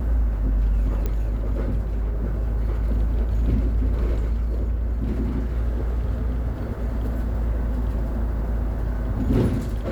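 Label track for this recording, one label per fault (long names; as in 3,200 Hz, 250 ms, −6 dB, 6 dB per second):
1.060000	1.060000	click −14 dBFS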